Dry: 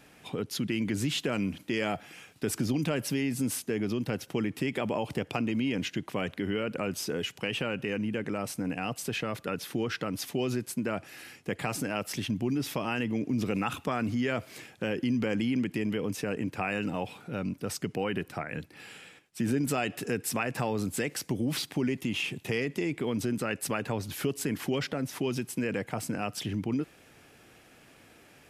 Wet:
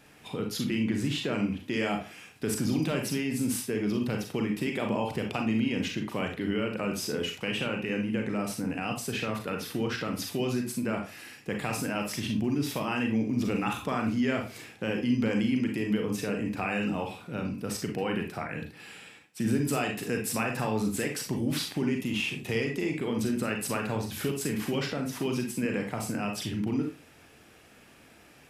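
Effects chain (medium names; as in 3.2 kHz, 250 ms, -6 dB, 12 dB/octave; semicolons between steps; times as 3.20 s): 0.75–1.66 s: treble shelf 4.7 kHz -8 dB; on a send: reverberation RT60 0.35 s, pre-delay 33 ms, DRR 2 dB; on the sum: trim -1 dB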